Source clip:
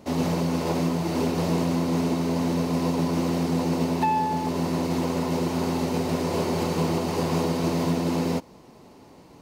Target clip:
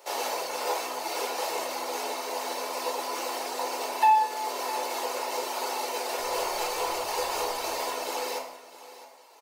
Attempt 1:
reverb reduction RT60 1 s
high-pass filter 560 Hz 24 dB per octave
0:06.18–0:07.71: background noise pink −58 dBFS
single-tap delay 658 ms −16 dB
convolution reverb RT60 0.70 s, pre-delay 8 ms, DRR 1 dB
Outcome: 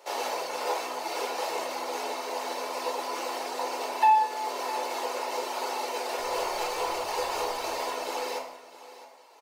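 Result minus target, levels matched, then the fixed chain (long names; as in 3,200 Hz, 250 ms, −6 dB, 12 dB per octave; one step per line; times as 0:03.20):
8,000 Hz band −3.5 dB
reverb reduction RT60 1 s
high-pass filter 560 Hz 24 dB per octave
high-shelf EQ 7,100 Hz +8 dB
0:06.18–0:07.71: background noise pink −58 dBFS
single-tap delay 658 ms −16 dB
convolution reverb RT60 0.70 s, pre-delay 8 ms, DRR 1 dB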